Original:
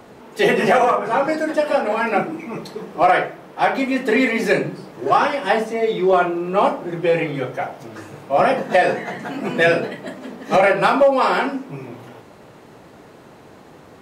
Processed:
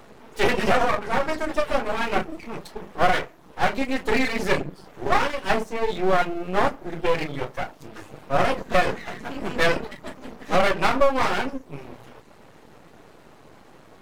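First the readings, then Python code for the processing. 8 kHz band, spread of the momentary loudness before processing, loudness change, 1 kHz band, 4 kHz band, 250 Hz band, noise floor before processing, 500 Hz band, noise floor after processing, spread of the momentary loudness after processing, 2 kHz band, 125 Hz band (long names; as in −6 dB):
can't be measured, 16 LU, −5.5 dB, −5.5 dB, −1.0 dB, −6.0 dB, −45 dBFS, −7.0 dB, −50 dBFS, 17 LU, −4.5 dB, −2.5 dB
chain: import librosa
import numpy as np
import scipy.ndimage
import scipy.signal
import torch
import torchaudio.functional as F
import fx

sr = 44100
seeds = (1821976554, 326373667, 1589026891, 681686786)

y = fx.dereverb_blind(x, sr, rt60_s=0.56)
y = np.maximum(y, 0.0)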